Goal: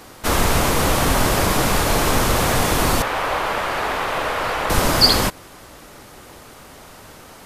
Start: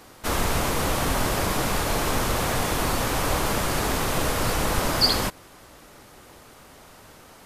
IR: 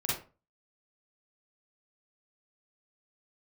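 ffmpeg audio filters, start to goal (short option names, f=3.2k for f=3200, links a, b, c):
-filter_complex "[0:a]asettb=1/sr,asplit=3[a][b][c];[a]atrim=end=3.024[d];[b]atrim=start=3.02:end=4.7,asetpts=PTS-STARTPTS,afade=t=in:d=0.004:c=qsin,afade=t=out:st=1.676:d=0.004:c=qsin,acrossover=split=460 3400:gain=0.178 1 0.158[e][f][g];[e][f][g]amix=inputs=3:normalize=0[h];[c]atrim=start=4.696[i];[d][h]acrossfade=d=0.004:c1=hsin:c2=qsin[j];[j][i]acrossfade=d=0.004:c1=qsin:c2=hsin,volume=6.5dB"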